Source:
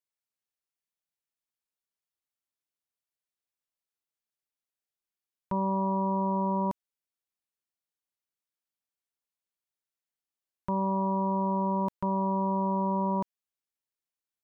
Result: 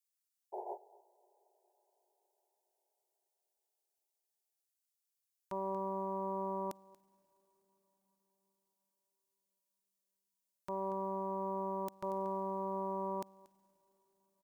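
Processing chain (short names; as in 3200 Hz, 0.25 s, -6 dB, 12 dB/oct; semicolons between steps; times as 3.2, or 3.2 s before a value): tone controls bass -15 dB, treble +14 dB; painted sound noise, 0.52–0.78, 360–1000 Hz -36 dBFS; thirty-one-band EQ 200 Hz -8 dB, 500 Hz -10 dB, 1000 Hz -11 dB; echo 0.234 s -15.5 dB; on a send at -16 dB: reverb RT60 5.8 s, pre-delay 36 ms; on the sum: upward expander 2.5:1, over -43 dBFS; gain +1 dB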